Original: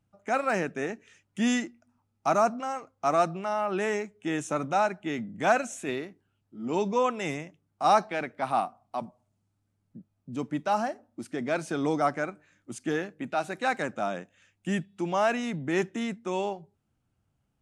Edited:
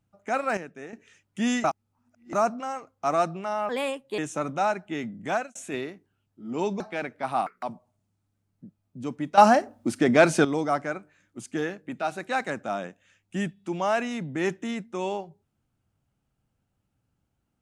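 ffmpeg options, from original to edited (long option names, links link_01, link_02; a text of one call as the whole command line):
ffmpeg -i in.wav -filter_complex "[0:a]asplit=13[link_01][link_02][link_03][link_04][link_05][link_06][link_07][link_08][link_09][link_10][link_11][link_12][link_13];[link_01]atrim=end=0.572[link_14];[link_02]atrim=start=0.568:end=0.932,asetpts=PTS-STARTPTS,volume=-9.5dB[link_15];[link_03]atrim=start=0.928:end=1.642[link_16];[link_04]atrim=start=1.638:end=2.332,asetpts=PTS-STARTPTS,areverse[link_17];[link_05]atrim=start=2.328:end=3.694[link_18];[link_06]atrim=start=3.69:end=4.33,asetpts=PTS-STARTPTS,asetrate=57330,aresample=44100[link_19];[link_07]atrim=start=4.326:end=5.7,asetpts=PTS-STARTPTS,afade=type=out:start_time=1.054:duration=0.32[link_20];[link_08]atrim=start=5.7:end=6.952,asetpts=PTS-STARTPTS,afade=type=in:duration=0.004:curve=hsin[link_21];[link_09]atrim=start=7.988:end=8.654[link_22];[link_10]atrim=start=8.65:end=8.95,asetpts=PTS-STARTPTS,asetrate=80703,aresample=44100[link_23];[link_11]atrim=start=8.946:end=10.702[link_24];[link_12]atrim=start=10.698:end=11.772,asetpts=PTS-STARTPTS,volume=11.5dB[link_25];[link_13]atrim=start=11.768[link_26];[link_14][link_15]acrossfade=duration=0.004:curve1=hsin:curve2=hsin[link_27];[link_27][link_16]acrossfade=duration=0.004:curve1=hsin:curve2=hsin[link_28];[link_28][link_17]acrossfade=duration=0.004:curve1=hsin:curve2=hsin[link_29];[link_29][link_18]acrossfade=duration=0.004:curve1=hsin:curve2=hsin[link_30];[link_30][link_19]acrossfade=duration=0.004:curve1=hsin:curve2=hsin[link_31];[link_20][link_21]concat=n=2:v=0:a=1[link_32];[link_31][link_32]acrossfade=duration=0.004:curve1=hsin:curve2=hsin[link_33];[link_33][link_22]acrossfade=duration=0.004:curve1=hsin:curve2=hsin[link_34];[link_34][link_23]acrossfade=duration=0.004:curve1=hsin:curve2=hsin[link_35];[link_35][link_24]acrossfade=duration=0.004:curve1=hsin:curve2=hsin[link_36];[link_36][link_25]acrossfade=duration=0.004:curve1=hsin:curve2=hsin[link_37];[link_37][link_26]acrossfade=duration=0.004:curve1=hsin:curve2=hsin" out.wav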